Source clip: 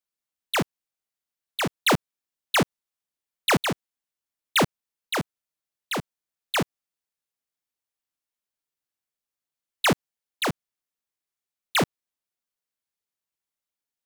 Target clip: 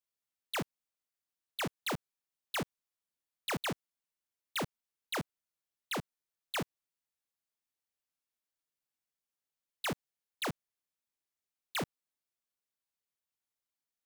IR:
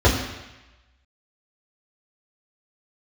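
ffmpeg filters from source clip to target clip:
-af "asoftclip=type=tanh:threshold=-29dB,volume=-4dB"

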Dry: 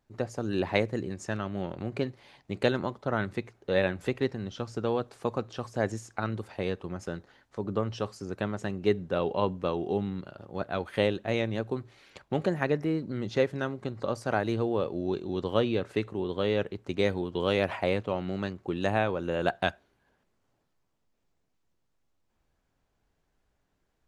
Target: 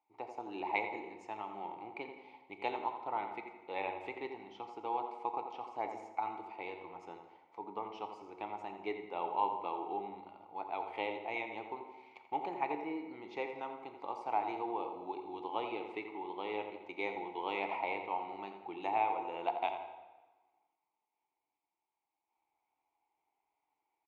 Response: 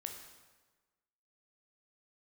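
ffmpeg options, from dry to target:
-filter_complex "[0:a]asplit=3[link_01][link_02][link_03];[link_01]bandpass=frequency=300:width_type=q:width=8,volume=0dB[link_04];[link_02]bandpass=frequency=870:width_type=q:width=8,volume=-6dB[link_05];[link_03]bandpass=frequency=2240:width_type=q:width=8,volume=-9dB[link_06];[link_04][link_05][link_06]amix=inputs=3:normalize=0,lowshelf=frequency=400:width_type=q:width=3:gain=-14,asplit=2[link_07][link_08];[link_08]adelay=85,lowpass=frequency=2300:poles=1,volume=-8dB,asplit=2[link_09][link_10];[link_10]adelay=85,lowpass=frequency=2300:poles=1,volume=0.51,asplit=2[link_11][link_12];[link_12]adelay=85,lowpass=frequency=2300:poles=1,volume=0.51,asplit=2[link_13][link_14];[link_14]adelay=85,lowpass=frequency=2300:poles=1,volume=0.51,asplit=2[link_15][link_16];[link_16]adelay=85,lowpass=frequency=2300:poles=1,volume=0.51,asplit=2[link_17][link_18];[link_18]adelay=85,lowpass=frequency=2300:poles=1,volume=0.51[link_19];[link_07][link_09][link_11][link_13][link_15][link_17][link_19]amix=inputs=7:normalize=0,asplit=2[link_20][link_21];[1:a]atrim=start_sample=2205[link_22];[link_21][link_22]afir=irnorm=-1:irlink=0,volume=5.5dB[link_23];[link_20][link_23]amix=inputs=2:normalize=0,volume=1dB"

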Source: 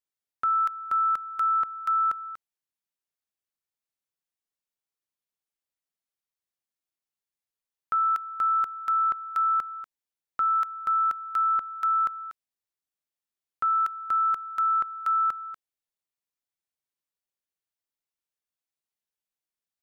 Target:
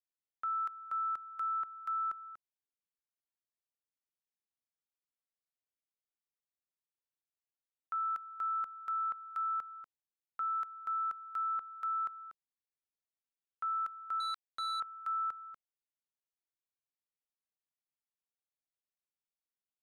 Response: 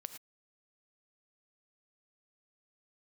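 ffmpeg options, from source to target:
-filter_complex "[0:a]highshelf=frequency=2000:gain=-8,acrossover=split=650[link_01][link_02];[link_01]alimiter=level_in=21dB:limit=-24dB:level=0:latency=1,volume=-21dB[link_03];[link_03][link_02]amix=inputs=2:normalize=0,asettb=1/sr,asplit=3[link_04][link_05][link_06];[link_04]atrim=end=14.204[link_07];[link_05]atrim=start=14.2:end=14.8,asetpts=PTS-STARTPTS,afade=type=in:duration=0.004:curve=qsin,afade=type=out:start_time=0.596:duration=0.004:curve=qsin,acrusher=bits=3:mix=0:aa=0.5[link_08];[link_06]atrim=start=14.796[link_09];[link_07][link_08]acrossfade=duration=0.004:curve1=hsin:curve2=qsin[link_10];[link_10][link_09]acrossfade=duration=0.004:curve1=qsin:curve2=hsin,volume=-8.5dB"

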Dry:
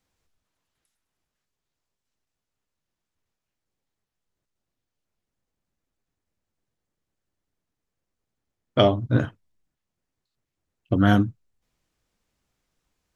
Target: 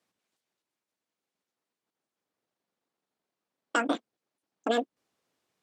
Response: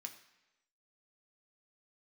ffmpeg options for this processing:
-af "alimiter=limit=-15dB:level=0:latency=1:release=174,highpass=100,lowpass=3900,asetrate=103194,aresample=44100"

